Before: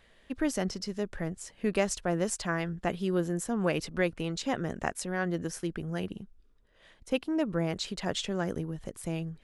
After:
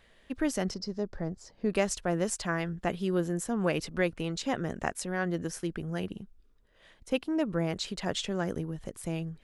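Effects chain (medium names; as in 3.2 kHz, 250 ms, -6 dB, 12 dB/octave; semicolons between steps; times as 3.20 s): 0.74–1.70 s: FFT filter 820 Hz 0 dB, 2.9 kHz -13 dB, 4.9 kHz +1 dB, 9.5 kHz -18 dB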